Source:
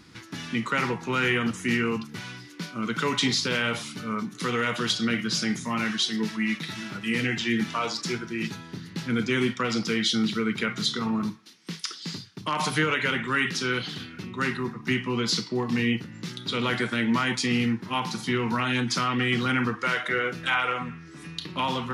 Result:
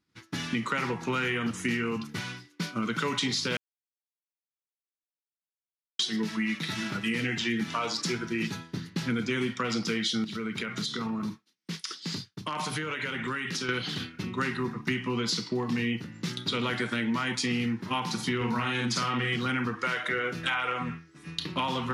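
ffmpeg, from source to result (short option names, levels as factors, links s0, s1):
-filter_complex "[0:a]asettb=1/sr,asplit=3[s0][s1][s2];[s0]atrim=end=10.244[s3];[s1]atrim=start=10.24:end=13.69,asetpts=PTS-STARTPTS,afade=t=in:d=0.004:c=qsin,afade=t=out:st=3.446:d=0.004:c=qsin,acompressor=threshold=0.0282:ratio=12:attack=3.2:release=140:knee=1:detection=peak[s4];[s2]atrim=start=13.686[s5];[s3][s4]acrossfade=d=0.004:c1=hsin:c2=qsin[s6];[s6][s5]acrossfade=d=0.004:c1=qsin:c2=hsin,asettb=1/sr,asplit=3[s7][s8][s9];[s7]atrim=end=18.364[s10];[s8]atrim=start=18.36:end=19.36,asetpts=PTS-STARTPTS,afade=t=in:d=0.004:c=qsin,afade=t=out:st=0.996:d=0.004:c=qsin,asplit=2[s11][s12];[s12]adelay=50,volume=0.75[s13];[s11][s13]amix=inputs=2:normalize=0,atrim=end_sample=44100[s14];[s9]atrim=start=19.356[s15];[s10][s14]acrossfade=d=0.004:c1=hsin:c2=qsin[s16];[s16][s15]acrossfade=d=0.004:c1=qsin:c2=hsin,asplit=3[s17][s18][s19];[s17]atrim=end=3.57,asetpts=PTS-STARTPTS,afade=t=out:st=3.566:d=0.004:c=hsin[s20];[s18]atrim=start=3.57:end=5.99,asetpts=PTS-STARTPTS,volume=0[s21];[s19]atrim=start=5.99,asetpts=PTS-STARTPTS,afade=t=in:d=0.004:c=hsin[s22];[s20][s21][s22]concat=n=3:v=0:a=1,agate=range=0.0224:threshold=0.02:ratio=3:detection=peak,acompressor=threshold=0.0251:ratio=4,volume=1.68"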